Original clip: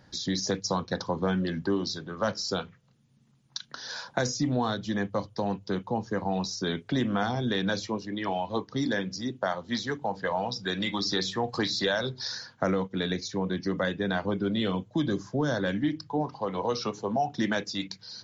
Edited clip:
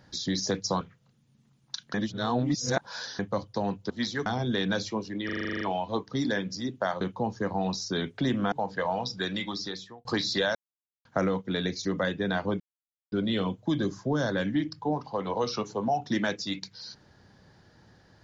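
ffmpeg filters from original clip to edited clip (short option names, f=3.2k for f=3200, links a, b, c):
-filter_complex "[0:a]asplit=22[a][b][c][d][e][f][g][h][i][j][k][l][m][n][o][p][q][r][s][t][u][v];[a]atrim=end=0.812[w];[b]atrim=start=2.628:end=3.762[x];[c]atrim=start=3.758:end=5.012,asetpts=PTS-STARTPTS,areverse[y];[d]atrim=start=5.008:end=5.722[z];[e]atrim=start=9.618:end=9.982[aa];[f]atrim=start=7.228:end=8.262[ab];[g]atrim=start=8.218:end=8.262[ac];[h]atrim=start=8.218:end=8.262[ad];[i]atrim=start=8.218:end=8.262[ae];[j]atrim=start=8.218:end=8.262[af];[k]atrim=start=8.218:end=8.262[ag];[l]atrim=start=8.218:end=8.262[ah];[m]atrim=start=8.218:end=8.262[ai];[n]atrim=start=8.218:end=8.262[aj];[o]atrim=start=8.218:end=9.622[ak];[p]atrim=start=5.718:end=7.232[al];[q]atrim=start=9.978:end=11.51,asetpts=PTS-STARTPTS,afade=t=out:st=0.662:d=0.87[am];[r]atrim=start=11.51:end=12.01,asetpts=PTS-STARTPTS,afade=t=in:d=0.004:c=hsin,afade=t=out:st=0.496:d=0.004:c=hsin[an];[s]atrim=start=12.01:end=12.51,asetpts=PTS-STARTPTS,volume=0[ao];[t]atrim=start=12.51:end=13.312,asetpts=PTS-STARTPTS,afade=t=in:d=0.004:c=hsin[ap];[u]atrim=start=13.648:end=14.4,asetpts=PTS-STARTPTS,afade=t=out:st=0.748:d=0.004:c=hsin,apad=pad_dur=0.52[aq];[v]atrim=start=14.4,asetpts=PTS-STARTPTS,afade=t=in:d=0.004:c=hsin[ar];[w][x]acrossfade=d=0.004:c1=hsin:c2=hsin[as];[as][y]acrossfade=d=0.004:c1=hsin:c2=hsin[at];[at][z]acrossfade=d=0.004:c1=hsin:c2=hsin[au];[au][aa]acrossfade=d=0.004:c1=hsin:c2=hsin[av];[av][ab]acrossfade=d=0.004:c1=hsin:c2=hsin[aw];[aw][ac]acrossfade=d=0.004:c1=hsin:c2=hsin[ax];[ax][ad]acrossfade=d=0.004:c1=hsin:c2=hsin[ay];[ay][ae]acrossfade=d=0.004:c1=hsin:c2=hsin[az];[az][af]acrossfade=d=0.004:c1=hsin:c2=hsin[ba];[ba][ag]acrossfade=d=0.004:c1=hsin:c2=hsin[bb];[bb][ah]acrossfade=d=0.004:c1=hsin:c2=hsin[bc];[bc][ai]acrossfade=d=0.004:c1=hsin:c2=hsin[bd];[bd][aj]acrossfade=d=0.004:c1=hsin:c2=hsin[be];[be][ak]acrossfade=d=0.004:c1=hsin:c2=hsin[bf];[bf][al]acrossfade=d=0.004:c1=hsin:c2=hsin[bg];[am][an][ao][ap]concat=n=4:v=0:a=1[bh];[bg][bh]acrossfade=d=0.004:c1=hsin:c2=hsin[bi];[aq][ar]concat=n=2:v=0:a=1[bj];[bi][bj]acrossfade=d=0.004:c1=hsin:c2=hsin"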